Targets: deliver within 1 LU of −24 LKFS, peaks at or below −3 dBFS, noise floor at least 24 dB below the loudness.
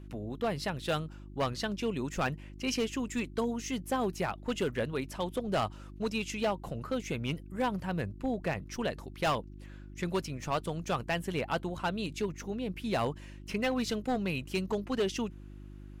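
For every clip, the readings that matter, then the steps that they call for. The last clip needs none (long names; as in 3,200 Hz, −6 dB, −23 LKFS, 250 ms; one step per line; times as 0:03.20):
share of clipped samples 1.0%; peaks flattened at −24.0 dBFS; mains hum 50 Hz; hum harmonics up to 350 Hz; level of the hum −45 dBFS; integrated loudness −34.0 LKFS; sample peak −24.0 dBFS; target loudness −24.0 LKFS
→ clipped peaks rebuilt −24 dBFS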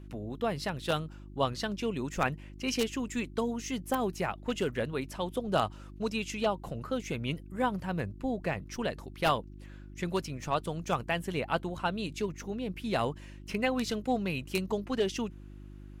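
share of clipped samples 0.0%; mains hum 50 Hz; hum harmonics up to 350 Hz; level of the hum −45 dBFS
→ hum removal 50 Hz, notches 7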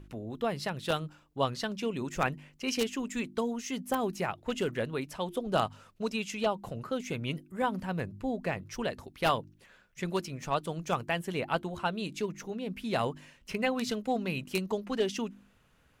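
mains hum none found; integrated loudness −33.5 LKFS; sample peak −14.5 dBFS; target loudness −24.0 LKFS
→ level +9.5 dB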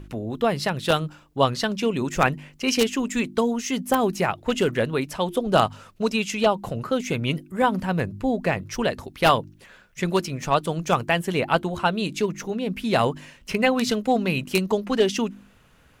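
integrated loudness −24.0 LKFS; sample peak −5.0 dBFS; background noise floor −56 dBFS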